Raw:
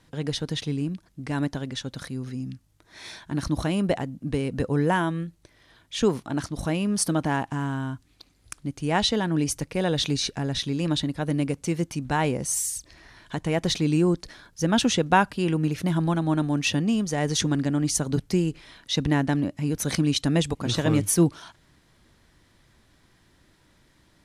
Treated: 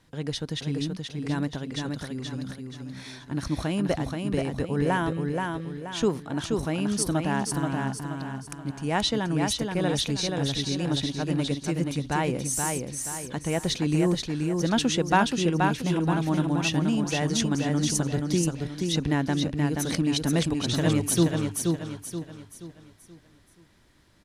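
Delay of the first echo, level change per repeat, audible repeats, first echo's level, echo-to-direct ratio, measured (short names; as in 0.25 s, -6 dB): 0.478 s, -8.0 dB, 4, -4.0 dB, -3.5 dB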